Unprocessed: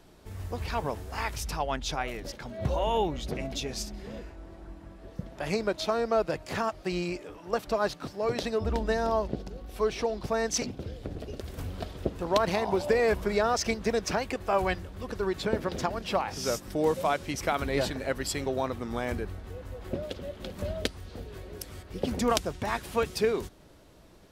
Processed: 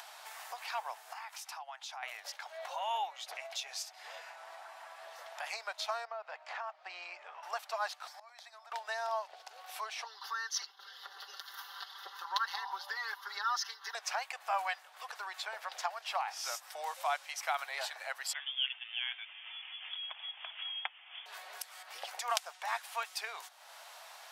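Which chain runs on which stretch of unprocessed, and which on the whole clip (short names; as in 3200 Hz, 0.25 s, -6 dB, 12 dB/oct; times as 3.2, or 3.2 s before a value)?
1.13–2.03 ladder high-pass 580 Hz, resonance 30% + compressor 3:1, threshold -44 dBFS
6.05–7.43 compressor, threshold -26 dBFS + tape spacing loss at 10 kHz 26 dB
8.07–8.72 inverse Chebyshev high-pass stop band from 180 Hz, stop band 60 dB + notch 2800 Hz, Q 5.4 + flipped gate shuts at -36 dBFS, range -26 dB
10.04–13.95 fixed phaser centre 2400 Hz, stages 6 + comb 5.1 ms, depth 84%
18.33–21.26 HPF 620 Hz 24 dB/oct + bell 1000 Hz +3.5 dB 1.3 oct + inverted band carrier 3900 Hz
whole clip: elliptic high-pass 740 Hz, stop band 70 dB; upward compressor, threshold -34 dBFS; gain -3.5 dB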